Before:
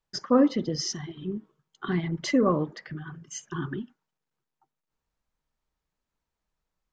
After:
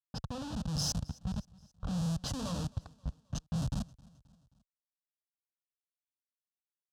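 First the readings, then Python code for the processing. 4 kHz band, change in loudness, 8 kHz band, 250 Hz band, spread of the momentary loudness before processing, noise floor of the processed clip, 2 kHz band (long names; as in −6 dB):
−4.5 dB, −10.0 dB, −3.5 dB, −11.5 dB, 18 LU, below −85 dBFS, −15.5 dB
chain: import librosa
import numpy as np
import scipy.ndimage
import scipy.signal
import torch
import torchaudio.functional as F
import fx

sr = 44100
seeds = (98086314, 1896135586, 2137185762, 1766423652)

y = fx.hum_notches(x, sr, base_hz=50, count=8)
y = fx.schmitt(y, sr, flips_db=-32.0)
y = scipy.signal.sosfilt(scipy.signal.butter(2, 58.0, 'highpass', fs=sr, output='sos'), y)
y = fx.peak_eq(y, sr, hz=990.0, db=-13.5, octaves=2.5)
y = fx.rider(y, sr, range_db=3, speed_s=2.0)
y = fx.env_lowpass(y, sr, base_hz=950.0, full_db=-28.0)
y = fx.fixed_phaser(y, sr, hz=880.0, stages=4)
y = fx.echo_feedback(y, sr, ms=265, feedback_pct=53, wet_db=-24.0)
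y = y * librosa.db_to_amplitude(4.5)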